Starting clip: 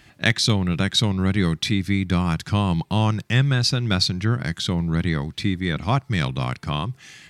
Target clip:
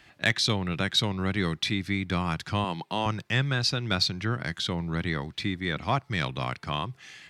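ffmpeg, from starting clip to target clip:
ffmpeg -i in.wav -filter_complex "[0:a]asettb=1/sr,asplit=3[link_01][link_02][link_03];[link_01]atrim=end=2.644[link_04];[link_02]atrim=start=2.64:end=3.06,asetpts=PTS-STARTPTS,afade=type=in:duration=0.004:curve=qsin,afade=type=out:start_time=0.416:duration=0.004:curve=qsin,highpass=220[link_05];[link_03]atrim=start=3.056[link_06];[link_04][link_05]acrossfade=duration=0.004:curve1=hsin:curve2=qsin[link_07];[link_07][link_06]acrossfade=duration=0.004:curve1=qsin:curve2=hsin,acrossover=split=370|5100[link_08][link_09][link_10];[link_09]acontrast=79[link_11];[link_08][link_11][link_10]amix=inputs=3:normalize=0,volume=-9dB" out.wav

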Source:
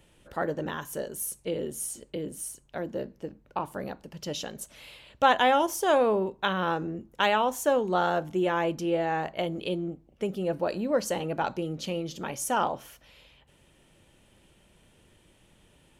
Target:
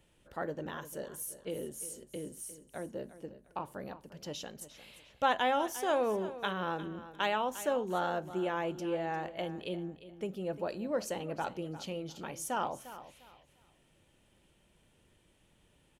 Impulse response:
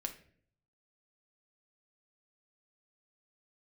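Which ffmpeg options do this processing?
-af "aecho=1:1:351|702|1053:0.188|0.049|0.0127,volume=-7.5dB"

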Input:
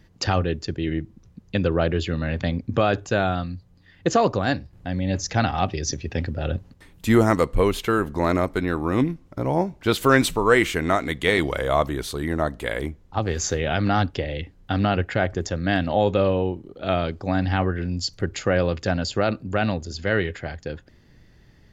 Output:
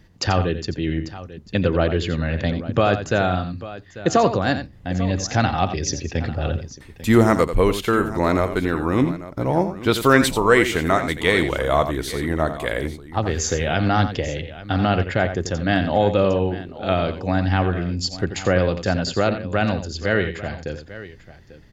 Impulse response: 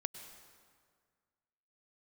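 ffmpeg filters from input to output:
-af "aecho=1:1:87|844:0.299|0.158,volume=2dB"

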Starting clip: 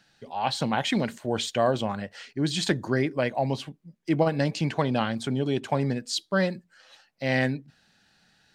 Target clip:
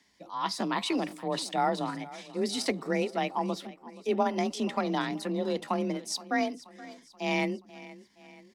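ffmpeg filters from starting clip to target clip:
ffmpeg -i in.wav -af "aecho=1:1:477|954|1431|1908:0.119|0.0606|0.0309|0.0158,afreqshift=31,asetrate=52444,aresample=44100,atempo=0.840896,volume=-4dB" out.wav

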